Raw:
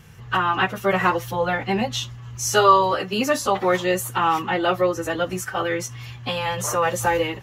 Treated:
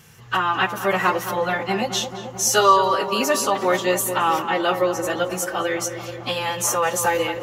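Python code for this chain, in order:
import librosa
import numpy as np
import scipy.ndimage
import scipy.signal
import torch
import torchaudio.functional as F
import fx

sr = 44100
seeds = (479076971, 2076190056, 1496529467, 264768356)

p1 = fx.highpass(x, sr, hz=170.0, slope=6)
p2 = fx.bass_treble(p1, sr, bass_db=-1, treble_db=6)
y = p2 + fx.echo_filtered(p2, sr, ms=218, feedback_pct=78, hz=1800.0, wet_db=-9.5, dry=0)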